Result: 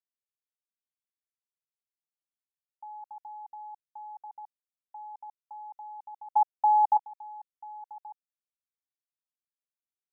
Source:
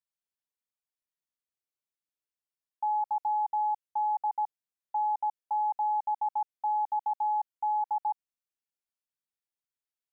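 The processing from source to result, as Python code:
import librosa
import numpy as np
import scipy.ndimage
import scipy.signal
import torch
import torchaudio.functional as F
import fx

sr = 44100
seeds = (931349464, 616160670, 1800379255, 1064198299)

y = fx.peak_eq(x, sr, hz=790.0, db=12.5, octaves=1.2, at=(6.36, 6.97))
y = fx.level_steps(y, sr, step_db=22)
y = F.gain(torch.from_numpy(y), 1.5).numpy()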